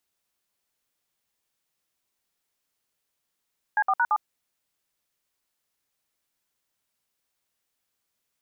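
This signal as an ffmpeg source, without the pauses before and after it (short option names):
-f lavfi -i "aevalsrc='0.0841*clip(min(mod(t,0.113),0.054-mod(t,0.113))/0.002,0,1)*(eq(floor(t/0.113),0)*(sin(2*PI*852*mod(t,0.113))+sin(2*PI*1633*mod(t,0.113)))+eq(floor(t/0.113),1)*(sin(2*PI*770*mod(t,0.113))+sin(2*PI*1209*mod(t,0.113)))+eq(floor(t/0.113),2)*(sin(2*PI*941*mod(t,0.113))+sin(2*PI*1477*mod(t,0.113)))+eq(floor(t/0.113),3)*(sin(2*PI*852*mod(t,0.113))+sin(2*PI*1209*mod(t,0.113))))':d=0.452:s=44100"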